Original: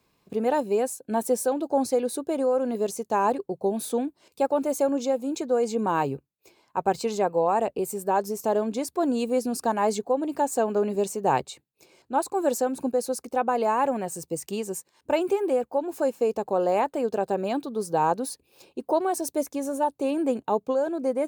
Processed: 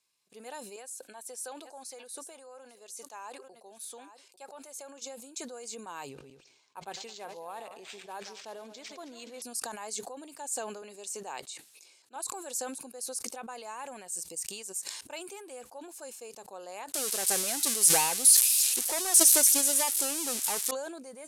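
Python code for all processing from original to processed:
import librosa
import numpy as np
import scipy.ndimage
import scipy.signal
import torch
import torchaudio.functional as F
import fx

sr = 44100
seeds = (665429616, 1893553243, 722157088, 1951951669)

y = fx.chain(x, sr, fx.highpass(hz=800.0, slope=6),
    fx.high_shelf(hz=3000.0, db=-8.0),
    fx.echo_single(ms=846, db=-21.5), at=(0.76, 5.02))
y = fx.chain(y, sr, fx.reverse_delay_fb(ms=107, feedback_pct=46, wet_db=-13),
    fx.resample_linear(factor=4), at=(6.09, 9.42))
y = fx.chain(y, sr, fx.highpass(hz=220.0, slope=12),
    fx.high_shelf(hz=11000.0, db=-5.5), at=(10.82, 12.16))
y = fx.chain(y, sr, fx.crossing_spikes(level_db=-22.0),
    fx.low_shelf(hz=250.0, db=6.0),
    fx.leveller(passes=3), at=(16.94, 20.71))
y = scipy.signal.sosfilt(scipy.signal.butter(4, 11000.0, 'lowpass', fs=sr, output='sos'), y)
y = F.preemphasis(torch.from_numpy(y), 0.97).numpy()
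y = fx.sustainer(y, sr, db_per_s=46.0)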